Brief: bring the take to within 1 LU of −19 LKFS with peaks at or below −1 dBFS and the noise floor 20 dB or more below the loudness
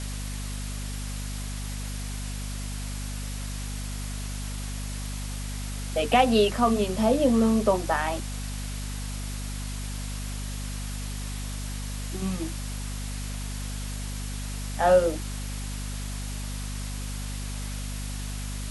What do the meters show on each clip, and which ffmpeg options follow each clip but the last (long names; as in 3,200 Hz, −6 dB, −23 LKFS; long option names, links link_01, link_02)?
mains hum 50 Hz; hum harmonics up to 250 Hz; level of the hum −31 dBFS; background noise floor −33 dBFS; target noise floor −50 dBFS; integrated loudness −29.5 LKFS; sample peak −8.0 dBFS; target loudness −19.0 LKFS
→ -af "bandreject=frequency=50:width_type=h:width=4,bandreject=frequency=100:width_type=h:width=4,bandreject=frequency=150:width_type=h:width=4,bandreject=frequency=200:width_type=h:width=4,bandreject=frequency=250:width_type=h:width=4"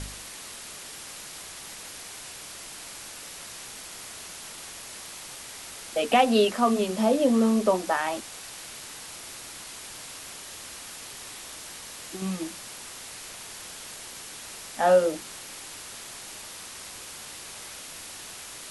mains hum none found; background noise floor −42 dBFS; target noise floor −51 dBFS
→ -af "afftdn=noise_reduction=9:noise_floor=-42"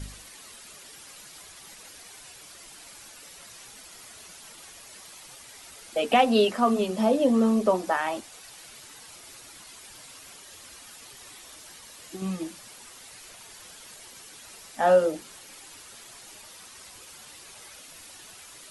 background noise floor −48 dBFS; integrated loudness −24.0 LKFS; sample peak −8.0 dBFS; target loudness −19.0 LKFS
→ -af "volume=5dB"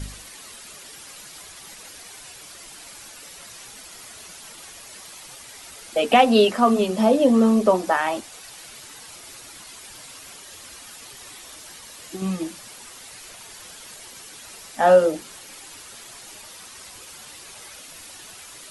integrated loudness −19.0 LKFS; sample peak −3.0 dBFS; background noise floor −43 dBFS